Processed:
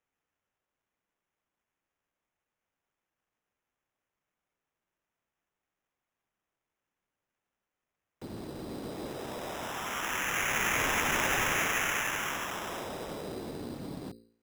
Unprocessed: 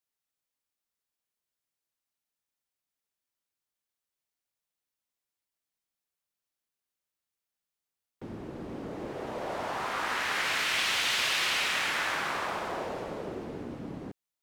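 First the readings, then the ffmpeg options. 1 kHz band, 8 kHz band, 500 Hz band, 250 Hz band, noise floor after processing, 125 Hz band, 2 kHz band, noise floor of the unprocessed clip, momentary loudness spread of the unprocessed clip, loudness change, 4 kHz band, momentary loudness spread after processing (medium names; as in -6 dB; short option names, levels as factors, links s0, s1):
-1.0 dB, +3.0 dB, -1.0 dB, +0.5 dB, under -85 dBFS, +2.5 dB, -0.5 dB, under -85 dBFS, 16 LU, -1.5 dB, -6.5 dB, 15 LU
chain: -filter_complex "[0:a]bandreject=f=57.2:t=h:w=4,bandreject=f=114.4:t=h:w=4,bandreject=f=171.6:t=h:w=4,bandreject=f=228.8:t=h:w=4,bandreject=f=286:t=h:w=4,bandreject=f=343.2:t=h:w=4,bandreject=f=400.4:t=h:w=4,bandreject=f=457.6:t=h:w=4,bandreject=f=514.8:t=h:w=4,acrossover=split=340|1300[s0][s1][s2];[s1]alimiter=level_in=3.98:limit=0.0631:level=0:latency=1,volume=0.251[s3];[s0][s3][s2]amix=inputs=3:normalize=0,acrusher=samples=10:mix=1:aa=0.000001"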